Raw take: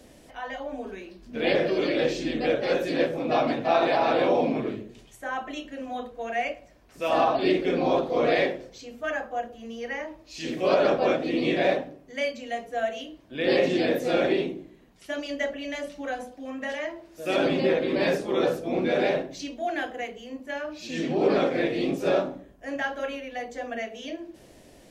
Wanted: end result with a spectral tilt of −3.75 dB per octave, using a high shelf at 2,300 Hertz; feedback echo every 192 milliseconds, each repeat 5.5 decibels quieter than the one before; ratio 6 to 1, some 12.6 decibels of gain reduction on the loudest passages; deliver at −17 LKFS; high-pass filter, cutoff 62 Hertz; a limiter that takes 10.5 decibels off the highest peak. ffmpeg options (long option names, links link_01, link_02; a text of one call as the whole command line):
ffmpeg -i in.wav -af "highpass=62,highshelf=frequency=2300:gain=-5.5,acompressor=threshold=-32dB:ratio=6,alimiter=level_in=8dB:limit=-24dB:level=0:latency=1,volume=-8dB,aecho=1:1:192|384|576|768|960|1152|1344:0.531|0.281|0.149|0.079|0.0419|0.0222|0.0118,volume=22.5dB" out.wav